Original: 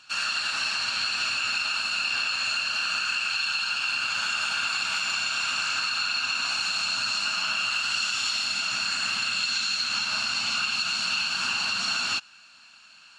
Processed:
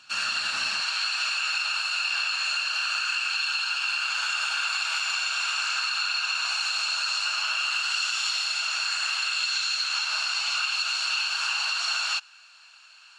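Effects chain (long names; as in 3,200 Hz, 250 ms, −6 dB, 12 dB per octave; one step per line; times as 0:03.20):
high-pass filter 81 Hz 24 dB per octave, from 0:00.80 660 Hz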